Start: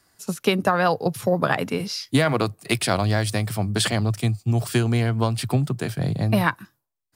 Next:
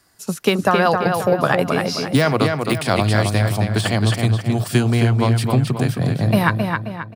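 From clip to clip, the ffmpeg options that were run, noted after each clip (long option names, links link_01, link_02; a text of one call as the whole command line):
ffmpeg -i in.wav -filter_complex "[0:a]asplit=2[link_01][link_02];[link_02]adelay=266,lowpass=frequency=4400:poles=1,volume=-4.5dB,asplit=2[link_03][link_04];[link_04]adelay=266,lowpass=frequency=4400:poles=1,volume=0.43,asplit=2[link_05][link_06];[link_06]adelay=266,lowpass=frequency=4400:poles=1,volume=0.43,asplit=2[link_07][link_08];[link_08]adelay=266,lowpass=frequency=4400:poles=1,volume=0.43,asplit=2[link_09][link_10];[link_10]adelay=266,lowpass=frequency=4400:poles=1,volume=0.43[link_11];[link_03][link_05][link_07][link_09][link_11]amix=inputs=5:normalize=0[link_12];[link_01][link_12]amix=inputs=2:normalize=0,deesser=0.5,volume=3.5dB" out.wav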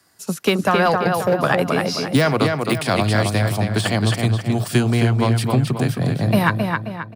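ffmpeg -i in.wav -filter_complex "[0:a]highpass=91,acrossover=split=300|1100|4200[link_01][link_02][link_03][link_04];[link_02]asoftclip=type=hard:threshold=-15dB[link_05];[link_01][link_05][link_03][link_04]amix=inputs=4:normalize=0" out.wav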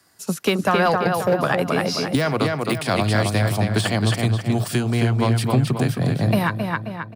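ffmpeg -i in.wav -af "alimiter=limit=-8dB:level=0:latency=1:release=488" out.wav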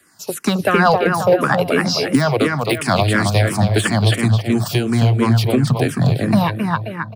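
ffmpeg -i in.wav -filter_complex "[0:a]asplit=2[link_01][link_02];[link_02]afreqshift=-2.9[link_03];[link_01][link_03]amix=inputs=2:normalize=1,volume=7dB" out.wav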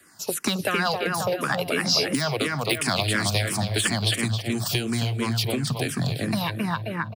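ffmpeg -i in.wav -filter_complex "[0:a]acrossover=split=2300[link_01][link_02];[link_01]acompressor=threshold=-24dB:ratio=6[link_03];[link_03][link_02]amix=inputs=2:normalize=0,aecho=1:1:314:0.0631" out.wav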